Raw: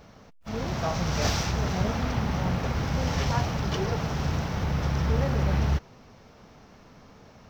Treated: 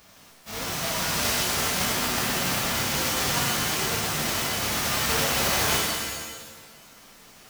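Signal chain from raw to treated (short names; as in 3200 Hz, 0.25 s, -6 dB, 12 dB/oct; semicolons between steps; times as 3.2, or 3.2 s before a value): spectral whitening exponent 0.3; shimmer reverb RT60 1.2 s, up +7 st, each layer -2 dB, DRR -2 dB; gain -5 dB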